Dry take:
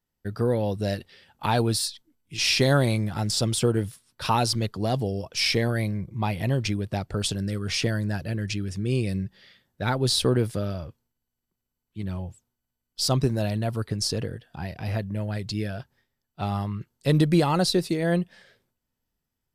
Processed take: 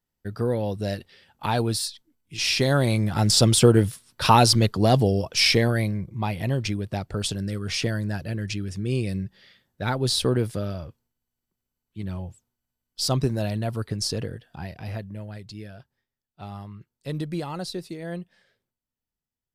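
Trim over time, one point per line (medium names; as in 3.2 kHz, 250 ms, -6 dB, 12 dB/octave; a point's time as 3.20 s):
2.73 s -1 dB
3.30 s +7 dB
5.11 s +7 dB
6.21 s -0.5 dB
14.49 s -0.5 dB
15.53 s -10 dB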